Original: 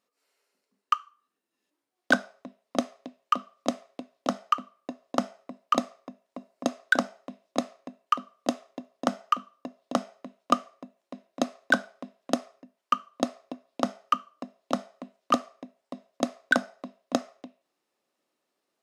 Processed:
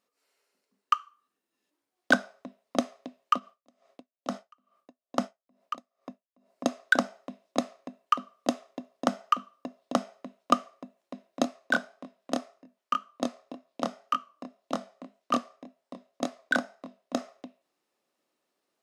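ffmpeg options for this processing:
ffmpeg -i in.wav -filter_complex "[0:a]asplit=3[link_01][link_02][link_03];[link_01]afade=type=out:start_time=3.38:duration=0.02[link_04];[link_02]aeval=exprs='val(0)*pow(10,-37*(0.5-0.5*cos(2*PI*2.3*n/s))/20)':channel_layout=same,afade=type=in:start_time=3.38:duration=0.02,afade=type=out:start_time=6.51:duration=0.02[link_05];[link_03]afade=type=in:start_time=6.51:duration=0.02[link_06];[link_04][link_05][link_06]amix=inputs=3:normalize=0,asplit=3[link_07][link_08][link_09];[link_07]afade=type=out:start_time=11.43:duration=0.02[link_10];[link_08]flanger=delay=22.5:depth=5:speed=1.9,afade=type=in:start_time=11.43:duration=0.02,afade=type=out:start_time=17.16:duration=0.02[link_11];[link_09]afade=type=in:start_time=17.16:duration=0.02[link_12];[link_10][link_11][link_12]amix=inputs=3:normalize=0" out.wav

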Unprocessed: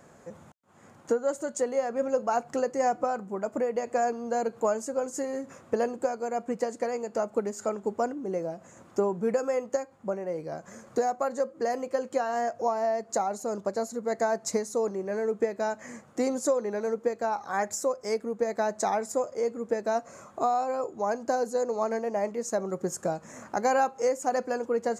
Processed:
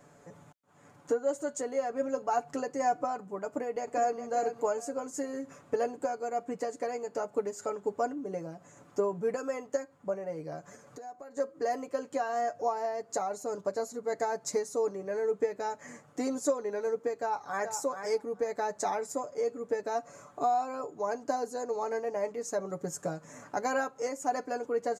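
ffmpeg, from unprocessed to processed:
ffmpeg -i in.wav -filter_complex "[0:a]asplit=2[link_01][link_02];[link_02]afade=type=in:start_time=3.46:duration=0.01,afade=type=out:start_time=4.21:duration=0.01,aecho=0:1:410|820|1230:0.375837|0.0939594|0.0234898[link_03];[link_01][link_03]amix=inputs=2:normalize=0,asettb=1/sr,asplit=3[link_04][link_05][link_06];[link_04]atrim=end=10.754[link_07];[link_05]atrim=start=10.75:end=11.37,asetpts=PTS-STARTPTS,afade=type=in:duration=0.004:curve=qsin,afade=type=out:start_time=0.616:duration=0.004:curve=qsin,acompressor=threshold=-46dB:ratio=2.5:attack=3.2:release=140:knee=1:detection=peak[link_08];[link_06]atrim=start=11.366[link_09];[link_07][link_08]acrossfade=duration=0.004:curve1=hsin:curve2=qsin[link_10];[link_10][link_09]acrossfade=duration=0.004:curve1=qsin:curve2=hsin,asplit=2[link_11][link_12];[link_12]afade=type=in:start_time=17.16:duration=0.01,afade=type=out:start_time=17.71:duration=0.01,aecho=0:1:430|860:0.398107|0.0597161[link_13];[link_11][link_13]amix=inputs=2:normalize=0,aecho=1:1:6.9:0.67,volume=-5dB" out.wav

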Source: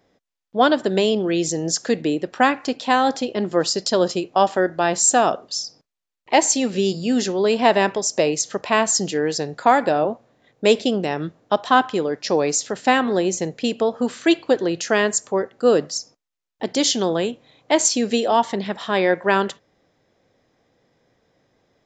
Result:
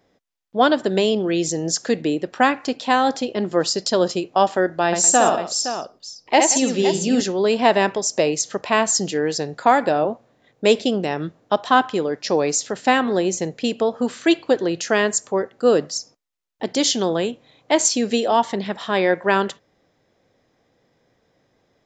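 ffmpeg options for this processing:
ffmpeg -i in.wav -filter_complex "[0:a]asettb=1/sr,asplit=3[link_01][link_02][link_03];[link_01]atrim=end=4.864[link_04];[link_02]atrim=start=4.86:end=7.21,asetpts=PTS-STARTPTS,afade=type=in:duration=0.004:curve=qsin,afade=type=out:start_time=2.346:duration=0.004:curve=qsin,aecho=1:1:64|176|516:0.596|0.188|0.316,atrim=end_sample=103635[link_05];[link_03]atrim=start=7.206[link_06];[link_04][link_05]acrossfade=duration=0.004:curve1=hsin:curve2=qsin[link_07];[link_07][link_06]acrossfade=duration=0.004:curve1=qsin:curve2=hsin" out.wav

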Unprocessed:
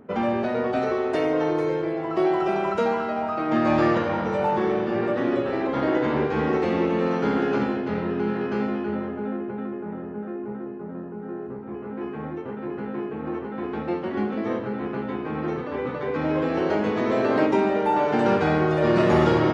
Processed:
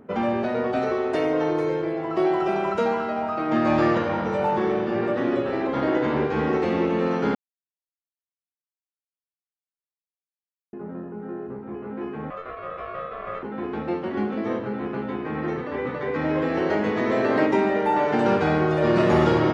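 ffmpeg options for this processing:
ffmpeg -i in.wav -filter_complex "[0:a]asettb=1/sr,asplit=3[link_01][link_02][link_03];[link_01]atrim=end=12.304[link_04];[link_02]atrim=start=12.3:end=13.43,asetpts=PTS-STARTPTS,afade=type=in:duration=0.004:curve=qsin,afade=type=out:start_time=1.126:duration=0.004:curve=qsin,aeval=exprs='val(0)*sin(2*PI*890*n/s)':channel_layout=same[link_05];[link_03]atrim=start=13.426[link_06];[link_04][link_05]acrossfade=duration=0.004:curve1=hsin:curve2=qsin[link_07];[link_07][link_06]acrossfade=duration=0.004:curve1=qsin:curve2=hsin,asettb=1/sr,asplit=3[link_08][link_09][link_10];[link_08]atrim=end=15.204[link_11];[link_09]atrim=start=15.2:end=18.15,asetpts=PTS-STARTPTS,afade=type=in:duration=0.004:curve=qsin,afade=type=out:start_time=2.946:duration=0.004:curve=qsin,equalizer=frequency=1900:width=6.8:gain=7[link_12];[link_10]atrim=start=18.146[link_13];[link_11][link_12]acrossfade=duration=0.004:curve1=hsin:curve2=qsin[link_14];[link_14][link_13]acrossfade=duration=0.004:curve1=qsin:curve2=hsin,asplit=3[link_15][link_16][link_17];[link_15]atrim=end=7.35,asetpts=PTS-STARTPTS,afade=type=out:start_time=7.346:duration=0.004:curve=hsin[link_18];[link_16]atrim=start=7.35:end=10.73,asetpts=PTS-STARTPTS,volume=0[link_19];[link_17]atrim=start=10.73,asetpts=PTS-STARTPTS,afade=type=in:duration=0.004:curve=hsin[link_20];[link_18][link_19][link_20]concat=n=3:v=0:a=1" out.wav

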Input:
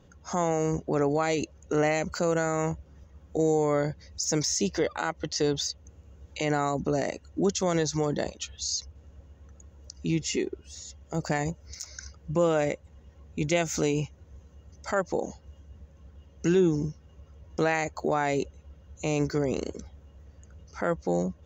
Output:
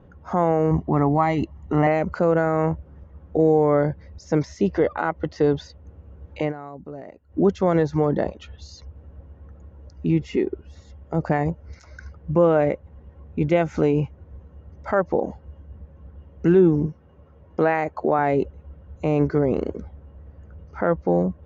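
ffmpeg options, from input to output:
ffmpeg -i in.wav -filter_complex "[0:a]asettb=1/sr,asplit=3[link_01][link_02][link_03];[link_01]atrim=end=0.714[link_04];[link_02]atrim=start=0.71:end=1.87,asetpts=PTS-STARTPTS,afade=type=in:duration=0.004:curve=qsin,afade=type=out:start_time=1.156:duration=0.004:curve=qsin,aecho=1:1:1:0.74,atrim=end_sample=51156[link_05];[link_03]atrim=start=1.866[link_06];[link_04][link_05]acrossfade=duration=0.004:curve1=hsin:curve2=qsin[link_07];[link_07][link_06]acrossfade=duration=0.004:curve1=qsin:curve2=hsin,asettb=1/sr,asplit=3[link_08][link_09][link_10];[link_08]atrim=end=16.864[link_11];[link_09]atrim=start=16.86:end=18.19,asetpts=PTS-STARTPTS,afade=type=in:duration=0.004:curve=qsin,afade=type=out:start_time=1.326:duration=0.004:curve=qsin,highpass=frequency=180:poles=1[link_12];[link_10]atrim=start=18.186[link_13];[link_11][link_12]acrossfade=duration=0.004:curve1=hsin:curve2=qsin[link_14];[link_14][link_13]acrossfade=duration=0.004:curve1=qsin:curve2=hsin,asplit=3[link_15][link_16][link_17];[link_15]atrim=end=6.53,asetpts=PTS-STARTPTS,afade=type=out:start_time=6.4:duration=0.13:curve=qsin:silence=0.149624[link_18];[link_16]atrim=start=6.53:end=7.28,asetpts=PTS-STARTPTS,volume=-16.5dB[link_19];[link_17]atrim=start=7.28,asetpts=PTS-STARTPTS,afade=type=in:duration=0.13:curve=qsin:silence=0.149624[link_20];[link_18][link_19][link_20]concat=n=3:v=0:a=1,lowpass=1500,volume=7dB" out.wav

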